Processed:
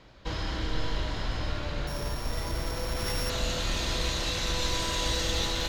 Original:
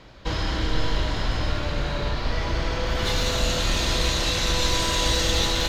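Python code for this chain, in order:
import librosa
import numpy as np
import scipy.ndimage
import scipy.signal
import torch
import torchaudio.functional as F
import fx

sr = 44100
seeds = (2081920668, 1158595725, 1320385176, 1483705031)

y = fx.sample_sort(x, sr, block=8, at=(1.87, 3.3))
y = F.gain(torch.from_numpy(y), -6.5).numpy()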